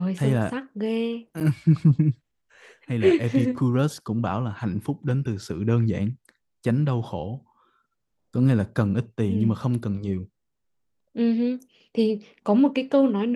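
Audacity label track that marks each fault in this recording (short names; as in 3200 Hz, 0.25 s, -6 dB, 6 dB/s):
1.400000	1.410000	gap 7.3 ms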